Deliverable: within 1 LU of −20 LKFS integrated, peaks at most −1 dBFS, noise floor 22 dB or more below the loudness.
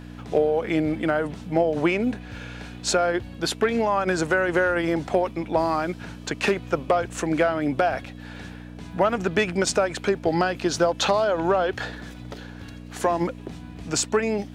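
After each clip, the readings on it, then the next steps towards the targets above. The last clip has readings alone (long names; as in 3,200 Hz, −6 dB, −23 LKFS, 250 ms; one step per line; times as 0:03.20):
crackle rate 57 per second; mains hum 60 Hz; hum harmonics up to 300 Hz; level of the hum −38 dBFS; integrated loudness −24.0 LKFS; sample peak −8.0 dBFS; target loudness −20.0 LKFS
→ click removal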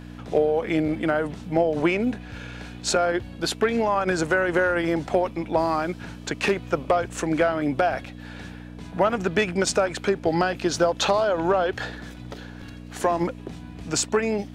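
crackle rate 0.28 per second; mains hum 60 Hz; hum harmonics up to 300 Hz; level of the hum −38 dBFS
→ hum removal 60 Hz, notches 5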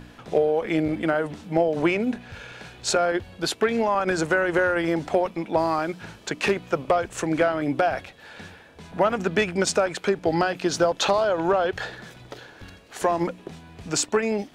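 mains hum none found; integrated loudness −24.0 LKFS; sample peak −8.0 dBFS; target loudness −20.0 LKFS
→ level +4 dB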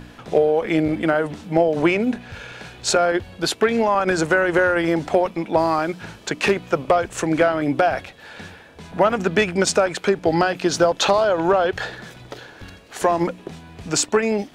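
integrated loudness −20.0 LKFS; sample peak −4.0 dBFS; background noise floor −45 dBFS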